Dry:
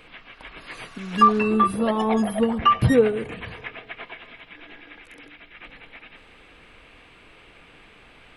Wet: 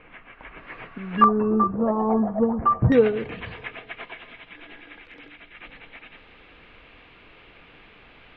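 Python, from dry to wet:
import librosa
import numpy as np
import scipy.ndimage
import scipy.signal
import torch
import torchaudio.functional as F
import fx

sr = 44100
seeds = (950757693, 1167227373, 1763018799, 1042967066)

y = fx.lowpass(x, sr, hz=fx.steps((0.0, 2400.0), (1.24, 1200.0), (2.92, 4100.0)), slope=24)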